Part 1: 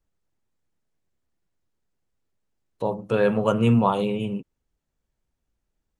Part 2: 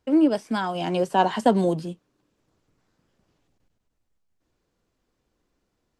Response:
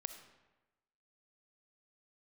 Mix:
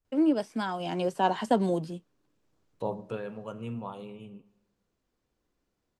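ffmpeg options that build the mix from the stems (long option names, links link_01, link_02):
-filter_complex "[0:a]volume=-9.5dB,afade=type=out:start_time=2.99:duration=0.23:silence=0.251189,asplit=2[link_01][link_02];[link_02]volume=-4dB[link_03];[1:a]adelay=50,volume=-5.5dB[link_04];[2:a]atrim=start_sample=2205[link_05];[link_03][link_05]afir=irnorm=-1:irlink=0[link_06];[link_01][link_04][link_06]amix=inputs=3:normalize=0"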